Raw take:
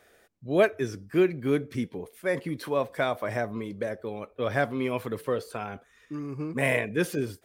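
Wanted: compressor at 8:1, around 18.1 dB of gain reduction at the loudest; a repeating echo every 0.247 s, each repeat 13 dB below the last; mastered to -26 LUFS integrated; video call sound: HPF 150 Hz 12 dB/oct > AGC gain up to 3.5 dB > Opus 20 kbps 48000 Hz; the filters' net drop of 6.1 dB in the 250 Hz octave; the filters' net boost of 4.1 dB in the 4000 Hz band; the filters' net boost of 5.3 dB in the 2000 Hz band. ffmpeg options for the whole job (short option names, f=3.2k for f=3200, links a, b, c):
-af "equalizer=f=250:t=o:g=-8.5,equalizer=f=2k:t=o:g=6,equalizer=f=4k:t=o:g=3,acompressor=threshold=-36dB:ratio=8,highpass=150,aecho=1:1:247|494|741:0.224|0.0493|0.0108,dynaudnorm=m=3.5dB,volume=15.5dB" -ar 48000 -c:a libopus -b:a 20k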